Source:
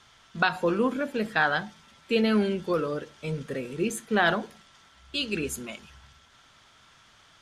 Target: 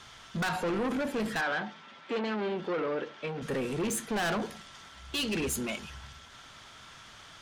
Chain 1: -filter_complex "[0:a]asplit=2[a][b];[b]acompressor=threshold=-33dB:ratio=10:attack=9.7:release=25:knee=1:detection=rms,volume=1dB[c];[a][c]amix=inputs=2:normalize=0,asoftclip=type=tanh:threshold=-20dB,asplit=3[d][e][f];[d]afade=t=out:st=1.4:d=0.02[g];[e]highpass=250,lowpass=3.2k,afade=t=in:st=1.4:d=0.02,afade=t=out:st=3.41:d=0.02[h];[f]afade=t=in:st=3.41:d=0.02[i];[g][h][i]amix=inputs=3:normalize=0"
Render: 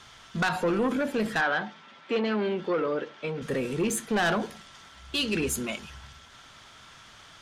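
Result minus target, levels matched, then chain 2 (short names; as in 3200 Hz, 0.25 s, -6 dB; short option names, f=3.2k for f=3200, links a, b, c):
soft clip: distortion -5 dB
-filter_complex "[0:a]asplit=2[a][b];[b]acompressor=threshold=-33dB:ratio=10:attack=9.7:release=25:knee=1:detection=rms,volume=1dB[c];[a][c]amix=inputs=2:normalize=0,asoftclip=type=tanh:threshold=-27.5dB,asplit=3[d][e][f];[d]afade=t=out:st=1.4:d=0.02[g];[e]highpass=250,lowpass=3.2k,afade=t=in:st=1.4:d=0.02,afade=t=out:st=3.41:d=0.02[h];[f]afade=t=in:st=3.41:d=0.02[i];[g][h][i]amix=inputs=3:normalize=0"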